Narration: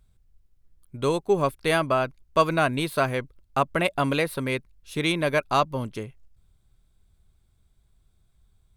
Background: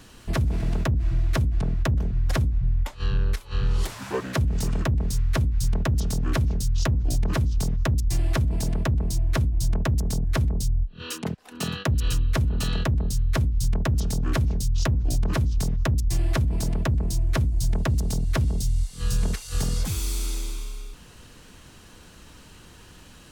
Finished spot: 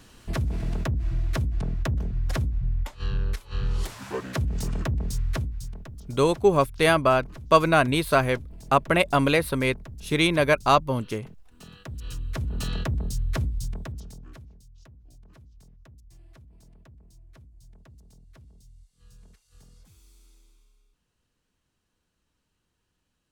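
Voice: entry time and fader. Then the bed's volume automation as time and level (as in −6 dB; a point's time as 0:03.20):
5.15 s, +3.0 dB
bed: 0:05.31 −3.5 dB
0:05.90 −19 dB
0:11.63 −19 dB
0:12.61 −4 dB
0:13.47 −4 dB
0:14.67 −29 dB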